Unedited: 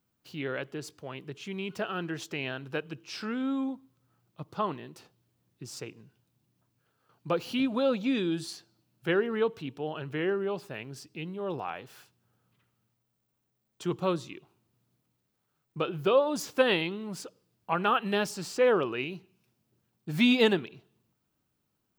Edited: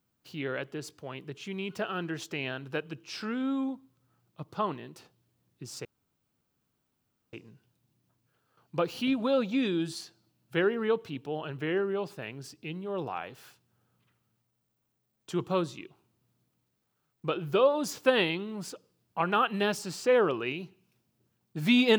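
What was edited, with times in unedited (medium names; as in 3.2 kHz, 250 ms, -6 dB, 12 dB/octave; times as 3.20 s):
5.85 s: insert room tone 1.48 s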